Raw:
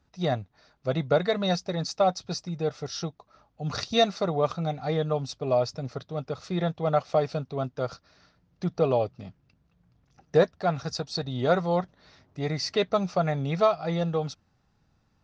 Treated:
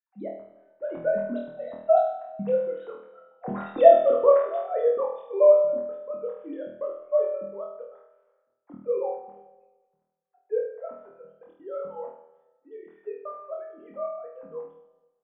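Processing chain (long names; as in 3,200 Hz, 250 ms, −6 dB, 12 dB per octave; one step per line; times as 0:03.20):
three sine waves on the formant tracks
source passing by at 0:03.58, 20 m/s, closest 22 metres
low-pass filter 1,100 Hz 12 dB per octave
gate pattern "xxx.x.xxxx" 163 BPM −60 dB
flanger 0.79 Hz, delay 3.3 ms, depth 9.3 ms, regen +33%
flutter between parallel walls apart 4.3 metres, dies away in 0.65 s
four-comb reverb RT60 1.3 s, combs from 33 ms, DRR 12 dB
level +8.5 dB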